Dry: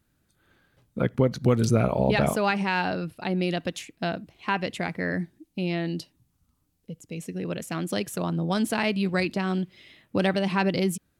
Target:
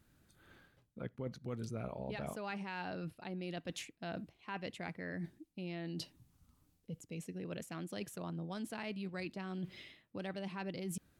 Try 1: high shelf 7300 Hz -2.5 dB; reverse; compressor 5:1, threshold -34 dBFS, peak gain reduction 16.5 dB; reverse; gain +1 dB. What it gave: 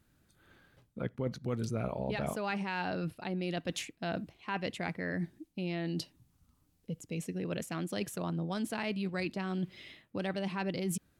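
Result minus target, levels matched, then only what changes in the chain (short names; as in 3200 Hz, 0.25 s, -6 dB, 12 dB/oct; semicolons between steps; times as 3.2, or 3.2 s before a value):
compressor: peak gain reduction -7 dB
change: compressor 5:1, threshold -43 dBFS, peak gain reduction 23.5 dB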